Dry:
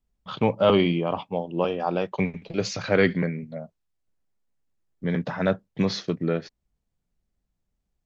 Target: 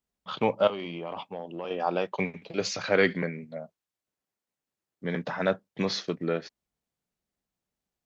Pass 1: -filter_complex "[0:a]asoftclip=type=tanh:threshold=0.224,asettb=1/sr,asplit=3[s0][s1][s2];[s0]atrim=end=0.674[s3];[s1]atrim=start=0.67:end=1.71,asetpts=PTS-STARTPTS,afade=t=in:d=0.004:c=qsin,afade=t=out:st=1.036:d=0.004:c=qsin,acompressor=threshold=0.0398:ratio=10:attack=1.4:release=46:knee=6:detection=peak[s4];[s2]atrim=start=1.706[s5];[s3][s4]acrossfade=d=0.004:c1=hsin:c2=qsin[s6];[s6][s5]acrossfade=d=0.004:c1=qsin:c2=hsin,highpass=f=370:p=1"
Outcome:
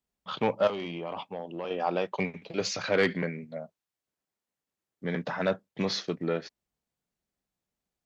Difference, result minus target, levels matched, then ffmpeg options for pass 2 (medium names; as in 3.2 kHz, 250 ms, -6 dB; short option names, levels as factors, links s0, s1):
saturation: distortion +20 dB
-filter_complex "[0:a]asoftclip=type=tanh:threshold=0.891,asettb=1/sr,asplit=3[s0][s1][s2];[s0]atrim=end=0.674[s3];[s1]atrim=start=0.67:end=1.71,asetpts=PTS-STARTPTS,afade=t=in:d=0.004:c=qsin,afade=t=out:st=1.036:d=0.004:c=qsin,acompressor=threshold=0.0398:ratio=10:attack=1.4:release=46:knee=6:detection=peak[s4];[s2]atrim=start=1.706[s5];[s3][s4]acrossfade=d=0.004:c1=hsin:c2=qsin[s6];[s6][s5]acrossfade=d=0.004:c1=qsin:c2=hsin,highpass=f=370:p=1"